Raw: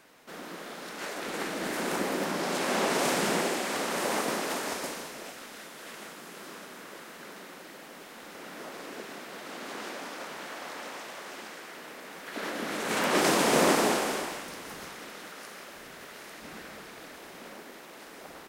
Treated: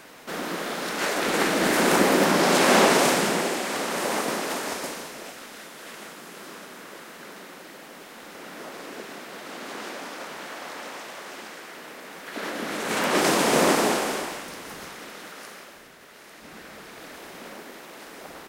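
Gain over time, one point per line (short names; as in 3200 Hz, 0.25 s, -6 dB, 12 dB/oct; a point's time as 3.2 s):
2.77 s +11 dB
3.34 s +3 dB
15.49 s +3 dB
15.98 s -4 dB
17.16 s +4.5 dB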